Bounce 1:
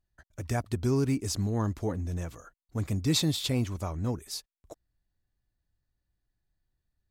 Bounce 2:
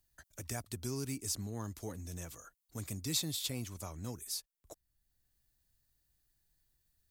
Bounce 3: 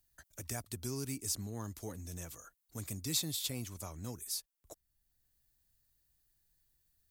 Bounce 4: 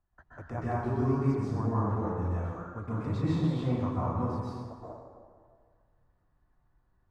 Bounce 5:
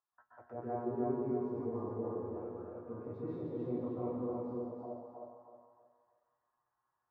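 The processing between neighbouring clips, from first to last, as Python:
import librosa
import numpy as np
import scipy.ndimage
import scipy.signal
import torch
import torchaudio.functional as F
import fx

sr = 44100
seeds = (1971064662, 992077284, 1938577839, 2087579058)

y1 = F.preemphasis(torch.from_numpy(x), 0.8).numpy()
y1 = fx.band_squash(y1, sr, depth_pct=40)
y1 = y1 * librosa.db_to_amplitude(1.5)
y2 = fx.high_shelf(y1, sr, hz=8600.0, db=4.5)
y2 = y2 * librosa.db_to_amplitude(-1.0)
y3 = fx.lowpass_res(y2, sr, hz=1100.0, q=2.3)
y3 = fx.rev_plate(y3, sr, seeds[0], rt60_s=1.8, hf_ratio=0.6, predelay_ms=115, drr_db=-9.0)
y3 = y3 * librosa.db_to_amplitude(2.0)
y4 = fx.auto_wah(y3, sr, base_hz=430.0, top_hz=1100.0, q=2.6, full_db=-35.0, direction='down')
y4 = fx.comb_fb(y4, sr, f0_hz=120.0, decay_s=0.16, harmonics='all', damping=0.0, mix_pct=90)
y4 = fx.echo_feedback(y4, sr, ms=315, feedback_pct=31, wet_db=-3.0)
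y4 = y4 * librosa.db_to_amplitude(5.5)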